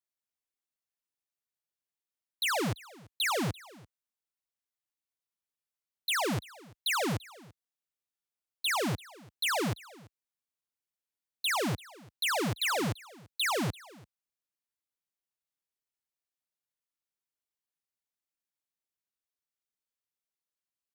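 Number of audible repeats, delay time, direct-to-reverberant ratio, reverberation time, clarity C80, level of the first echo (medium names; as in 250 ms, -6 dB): 1, 339 ms, no reverb, no reverb, no reverb, -22.0 dB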